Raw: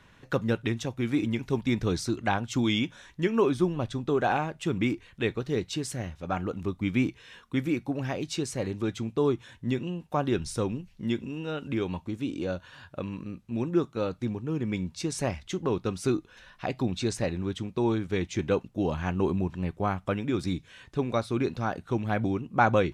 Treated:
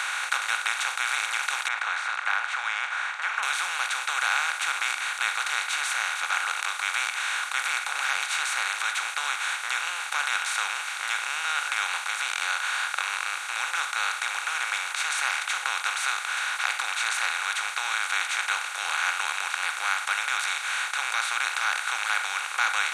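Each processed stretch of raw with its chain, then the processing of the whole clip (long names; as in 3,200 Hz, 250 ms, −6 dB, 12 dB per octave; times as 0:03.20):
0:01.68–0:03.43: elliptic band-pass filter 620–1,800 Hz, stop band 80 dB + de-essing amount 65%
whole clip: compressor on every frequency bin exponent 0.2; high-pass filter 1,300 Hz 24 dB per octave; parametric band 5,100 Hz −10 dB 0.21 octaves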